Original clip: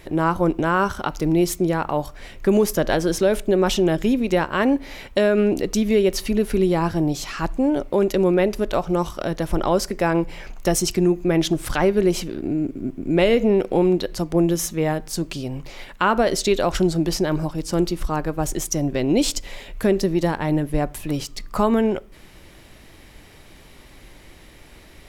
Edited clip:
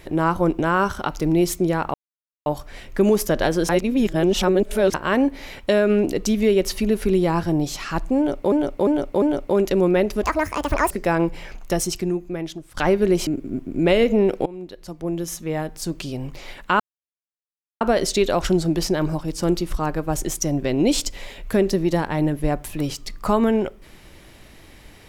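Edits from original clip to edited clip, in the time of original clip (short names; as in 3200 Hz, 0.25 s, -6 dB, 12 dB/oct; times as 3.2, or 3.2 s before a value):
1.94 insert silence 0.52 s
3.17–4.42 reverse
7.65–8 loop, 4 plays
8.66–9.86 speed 177%
10.36–11.72 fade out, to -22.5 dB
12.22–12.58 cut
13.77–15.57 fade in linear, from -22 dB
16.11 insert silence 1.01 s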